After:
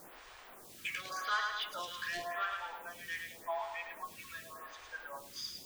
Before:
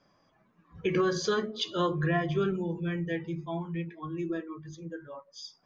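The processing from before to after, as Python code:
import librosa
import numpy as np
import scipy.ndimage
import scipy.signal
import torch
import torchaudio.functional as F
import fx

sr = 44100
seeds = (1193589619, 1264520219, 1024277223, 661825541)

y = scipy.signal.sosfilt(scipy.signal.butter(8, 630.0, 'highpass', fs=sr, output='sos'), x)
y = fx.tilt_shelf(y, sr, db=-6.5, hz=880.0)
y = fx.echo_feedback(y, sr, ms=107, feedback_pct=51, wet_db=-6)
y = fx.quant_dither(y, sr, seeds[0], bits=8, dither='triangular')
y = fx.high_shelf(y, sr, hz=3200.0, db=-11.5)
y = 10.0 ** (-31.5 / 20.0) * np.tanh(y / 10.0 ** (-31.5 / 20.0))
y = fx.stagger_phaser(y, sr, hz=0.88)
y = y * 10.0 ** (4.5 / 20.0)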